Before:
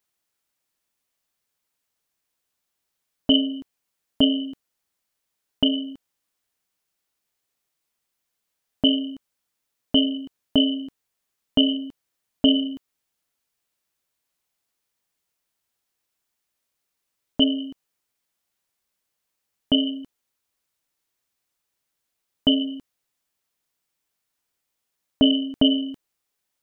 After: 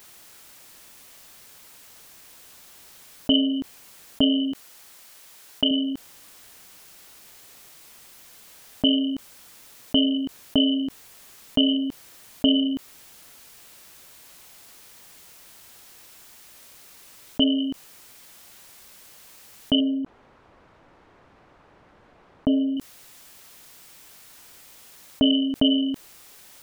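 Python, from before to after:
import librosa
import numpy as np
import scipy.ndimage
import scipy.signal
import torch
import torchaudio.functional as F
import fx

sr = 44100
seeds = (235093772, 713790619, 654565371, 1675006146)

y = fx.low_shelf(x, sr, hz=340.0, db=-8.0, at=(4.52, 5.71))
y = fx.lowpass(y, sr, hz=1100.0, slope=12, at=(19.8, 22.77))
y = fx.env_flatten(y, sr, amount_pct=50)
y = y * librosa.db_to_amplitude(-3.0)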